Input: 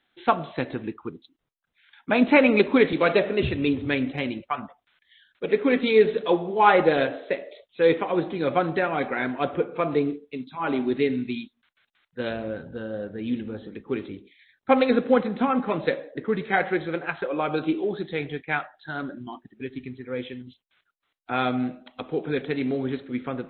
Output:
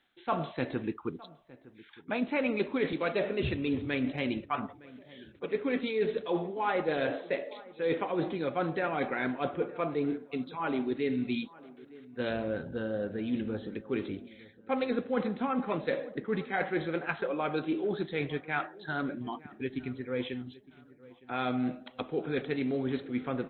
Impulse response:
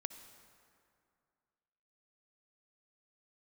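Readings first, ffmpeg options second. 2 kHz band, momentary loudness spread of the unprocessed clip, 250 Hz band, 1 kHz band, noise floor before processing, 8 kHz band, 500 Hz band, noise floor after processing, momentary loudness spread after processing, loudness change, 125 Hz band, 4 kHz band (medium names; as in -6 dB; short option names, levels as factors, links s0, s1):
-8.0 dB, 17 LU, -6.5 dB, -9.0 dB, -78 dBFS, no reading, -8.5 dB, -57 dBFS, 10 LU, -8.5 dB, -5.0 dB, -7.5 dB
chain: -filter_complex "[0:a]areverse,acompressor=threshold=0.0398:ratio=5,areverse,asplit=2[s0][s1];[s1]adelay=912,lowpass=f=1900:p=1,volume=0.1,asplit=2[s2][s3];[s3]adelay=912,lowpass=f=1900:p=1,volume=0.43,asplit=2[s4][s5];[s5]adelay=912,lowpass=f=1900:p=1,volume=0.43[s6];[s0][s2][s4][s6]amix=inputs=4:normalize=0"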